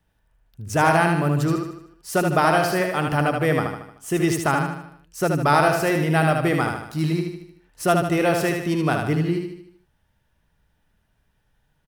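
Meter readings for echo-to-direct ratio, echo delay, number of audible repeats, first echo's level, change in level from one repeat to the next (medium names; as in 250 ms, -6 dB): -3.5 dB, 76 ms, 5, -4.5 dB, -6.0 dB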